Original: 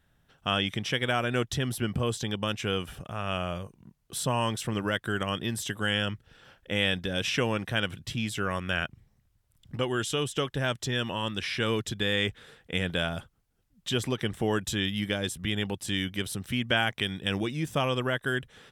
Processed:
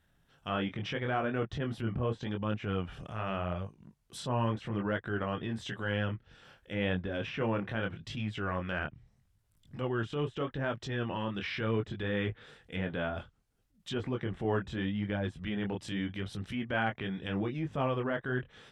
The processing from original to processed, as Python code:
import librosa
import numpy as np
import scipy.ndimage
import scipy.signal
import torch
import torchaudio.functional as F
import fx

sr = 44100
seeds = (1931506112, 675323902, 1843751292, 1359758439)

y = fx.chorus_voices(x, sr, voices=2, hz=0.79, base_ms=23, depth_ms=4.3, mix_pct=35)
y = fx.env_lowpass_down(y, sr, base_hz=1600.0, full_db=-29.0)
y = fx.transient(y, sr, attack_db=-7, sustain_db=0)
y = F.gain(torch.from_numpy(y), 1.0).numpy()